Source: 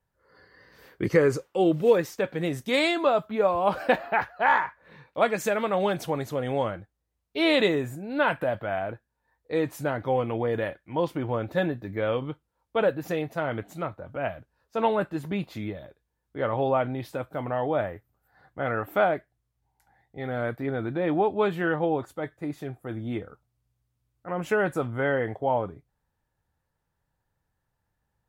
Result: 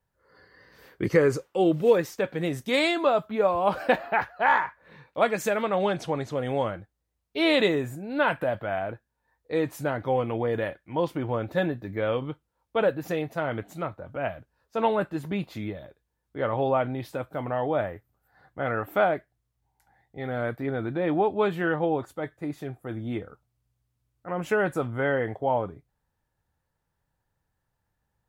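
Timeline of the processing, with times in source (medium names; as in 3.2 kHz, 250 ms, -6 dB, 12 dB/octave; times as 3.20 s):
5.62–6.36 s: low-pass 7.2 kHz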